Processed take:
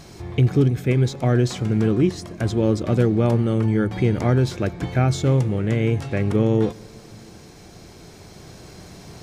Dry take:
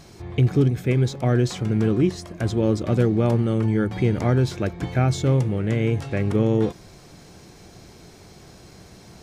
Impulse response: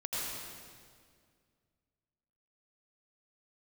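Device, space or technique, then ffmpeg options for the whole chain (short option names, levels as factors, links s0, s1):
ducked reverb: -filter_complex "[0:a]asplit=3[s0][s1][s2];[1:a]atrim=start_sample=2205[s3];[s1][s3]afir=irnorm=-1:irlink=0[s4];[s2]apad=whole_len=407034[s5];[s4][s5]sidechaincompress=threshold=0.0141:ratio=8:attack=16:release=1430,volume=0.501[s6];[s0][s6]amix=inputs=2:normalize=0,volume=1.12"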